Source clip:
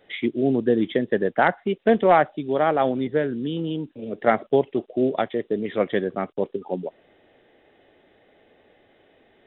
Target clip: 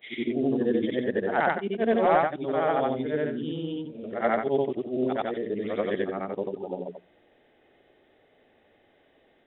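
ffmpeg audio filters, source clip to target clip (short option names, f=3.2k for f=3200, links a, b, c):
-af "afftfilt=real='re':imag='-im':win_size=8192:overlap=0.75,bandreject=f=60:t=h:w=6,bandreject=f=120:t=h:w=6,bandreject=f=180:t=h:w=6"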